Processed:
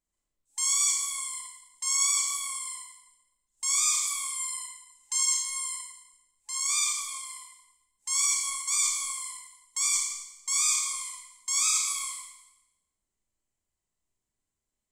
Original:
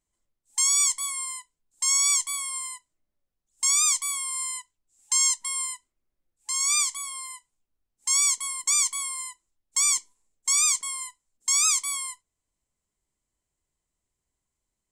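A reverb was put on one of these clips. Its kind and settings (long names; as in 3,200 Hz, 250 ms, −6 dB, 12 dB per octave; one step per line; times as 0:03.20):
four-comb reverb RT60 0.93 s, combs from 28 ms, DRR −2.5 dB
level −7.5 dB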